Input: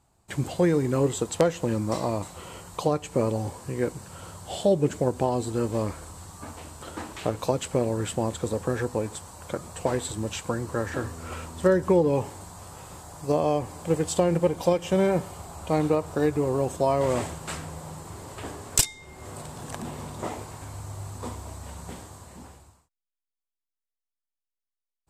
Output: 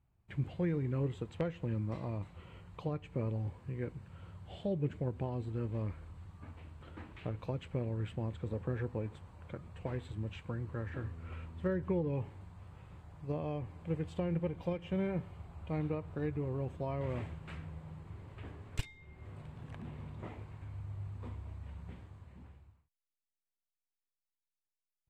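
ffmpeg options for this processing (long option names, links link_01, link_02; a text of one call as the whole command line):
ffmpeg -i in.wav -filter_complex "[0:a]asettb=1/sr,asplit=3[link_01][link_02][link_03];[link_01]atrim=end=8.474[link_04];[link_02]atrim=start=8.47:end=9.5,asetpts=PTS-STARTPTS,afade=type=in:duration=0.004:curve=qsin,afade=type=out:start_time=1.026:duration=0.004:curve=qsin,equalizer=frequency=490:width=0.44:gain=3[link_05];[link_03]atrim=start=9.496[link_06];[link_04][link_05]acrossfade=duration=0.004:curve1=hsin:curve2=qsin[link_07];[link_07][link_06]acrossfade=duration=0.004:curve1=qsin:curve2=hsin,firequalizer=gain_entry='entry(110,0);entry(250,-8);entry(720,-14);entry(2300,-6);entry(5300,-26);entry(7800,-30)':delay=0.05:min_phase=1,volume=-4.5dB" out.wav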